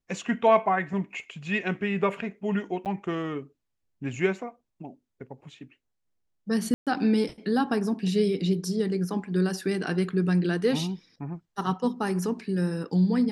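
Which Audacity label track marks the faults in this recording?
2.850000	2.860000	gap 8.8 ms
6.740000	6.870000	gap 0.127 s

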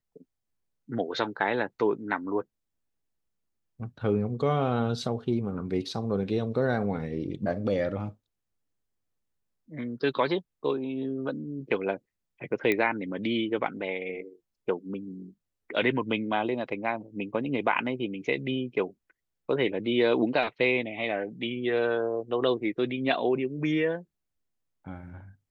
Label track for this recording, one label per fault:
12.720000	12.720000	pop -14 dBFS

